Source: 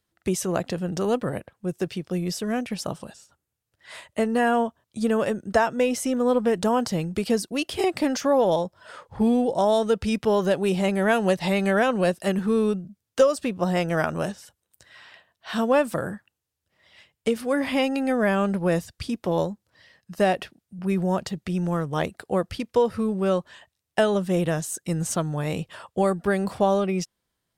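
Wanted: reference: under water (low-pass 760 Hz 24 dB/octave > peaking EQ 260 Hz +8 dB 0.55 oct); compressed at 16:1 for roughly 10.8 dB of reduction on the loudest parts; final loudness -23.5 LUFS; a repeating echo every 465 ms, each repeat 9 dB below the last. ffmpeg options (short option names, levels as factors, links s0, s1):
-af "acompressor=threshold=0.0631:ratio=16,lowpass=f=760:w=0.5412,lowpass=f=760:w=1.3066,equalizer=f=260:t=o:w=0.55:g=8,aecho=1:1:465|930|1395|1860:0.355|0.124|0.0435|0.0152,volume=1.58"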